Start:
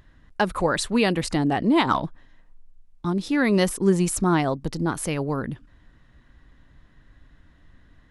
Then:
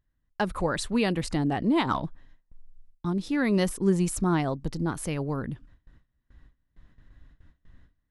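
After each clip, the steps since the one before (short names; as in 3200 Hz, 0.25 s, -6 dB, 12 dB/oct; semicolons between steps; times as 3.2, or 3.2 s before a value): gate with hold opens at -42 dBFS; low shelf 180 Hz +6.5 dB; gain -6 dB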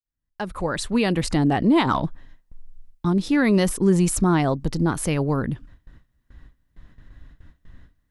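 opening faded in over 1.34 s; in parallel at +3 dB: limiter -19.5 dBFS, peak gain reduction 8 dB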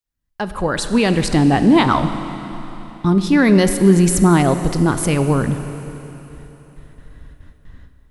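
Schroeder reverb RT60 3.6 s, combs from 31 ms, DRR 9 dB; gain +5.5 dB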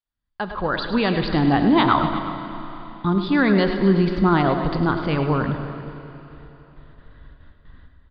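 rippled Chebyshev low-pass 4800 Hz, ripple 6 dB; on a send: tapped delay 0.102/0.105/0.242/0.363 s -17/-10.5/-14.5/-17.5 dB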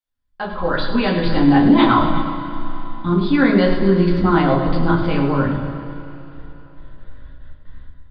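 shoebox room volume 140 m³, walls furnished, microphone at 2.1 m; gain -3 dB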